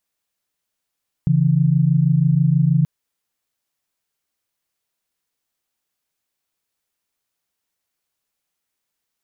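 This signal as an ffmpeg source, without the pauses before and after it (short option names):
-f lavfi -i "aevalsrc='0.168*(sin(2*PI*138.59*t)+sin(2*PI*164.81*t))':d=1.58:s=44100"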